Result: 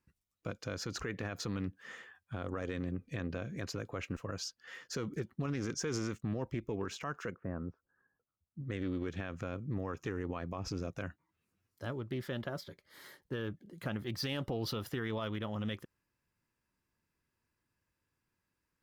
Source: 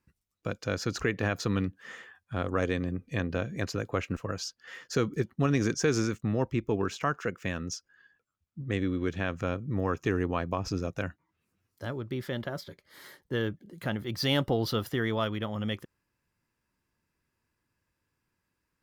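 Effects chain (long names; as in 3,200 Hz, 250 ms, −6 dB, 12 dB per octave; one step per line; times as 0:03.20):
0:07.34–0:08.62: low-pass filter 1,200 Hz 24 dB per octave
brickwall limiter −23 dBFS, peak gain reduction 8.5 dB
highs frequency-modulated by the lows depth 0.17 ms
level −4 dB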